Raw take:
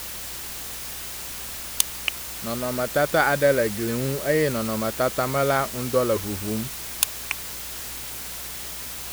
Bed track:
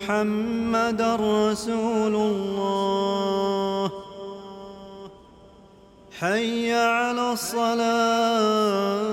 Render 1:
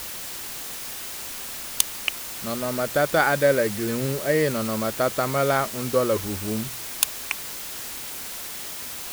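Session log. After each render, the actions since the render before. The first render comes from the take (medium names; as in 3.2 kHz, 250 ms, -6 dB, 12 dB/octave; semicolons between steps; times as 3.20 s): de-hum 60 Hz, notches 3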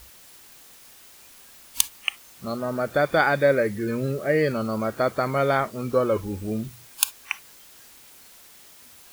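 noise print and reduce 15 dB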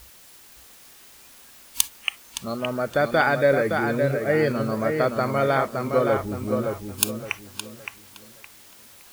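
filtered feedback delay 566 ms, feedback 30%, low-pass 3.9 kHz, level -5 dB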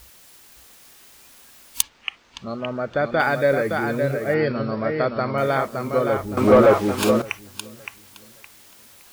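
1.82–3.20 s: distance through air 170 m; 4.34–5.38 s: brick-wall FIR low-pass 5.6 kHz; 6.37–7.22 s: overdrive pedal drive 29 dB, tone 1.2 kHz, clips at -1 dBFS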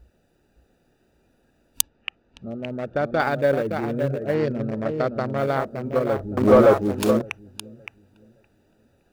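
local Wiener filter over 41 samples; dynamic bell 2.2 kHz, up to -4 dB, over -37 dBFS, Q 1.4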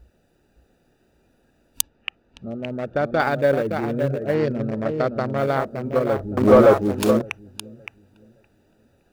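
trim +1.5 dB; peak limiter -3 dBFS, peak gain reduction 2.5 dB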